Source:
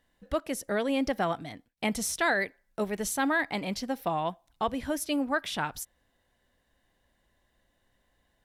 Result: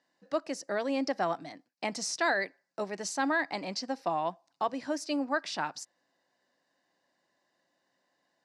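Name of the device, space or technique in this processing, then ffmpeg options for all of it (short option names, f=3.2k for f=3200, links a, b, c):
television speaker: -af "highpass=f=190:w=0.5412,highpass=f=190:w=1.3066,equalizer=f=220:t=q:w=4:g=-9,equalizer=f=440:t=q:w=4:g=-6,equalizer=f=1.4k:t=q:w=4:g=-3,equalizer=f=2.2k:t=q:w=4:g=-4,equalizer=f=3.3k:t=q:w=4:g=-10,equalizer=f=4.8k:t=q:w=4:g=7,lowpass=f=7.2k:w=0.5412,lowpass=f=7.2k:w=1.3066"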